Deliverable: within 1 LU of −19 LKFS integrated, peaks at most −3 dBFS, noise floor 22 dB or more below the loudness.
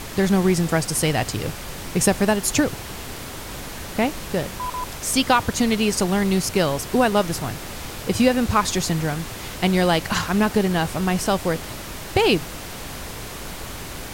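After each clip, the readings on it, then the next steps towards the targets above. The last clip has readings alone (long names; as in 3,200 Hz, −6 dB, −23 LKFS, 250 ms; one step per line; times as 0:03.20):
background noise floor −34 dBFS; target noise floor −44 dBFS; integrated loudness −21.5 LKFS; sample peak −2.5 dBFS; target loudness −19.0 LKFS
→ noise reduction from a noise print 10 dB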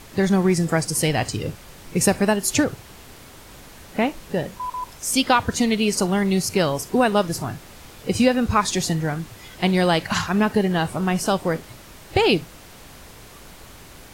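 background noise floor −44 dBFS; integrated loudness −21.5 LKFS; sample peak −3.0 dBFS; target loudness −19.0 LKFS
→ level +2.5 dB
brickwall limiter −3 dBFS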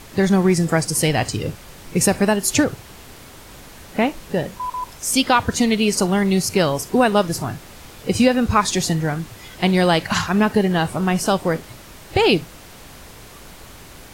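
integrated loudness −19.5 LKFS; sample peak −3.0 dBFS; background noise floor −42 dBFS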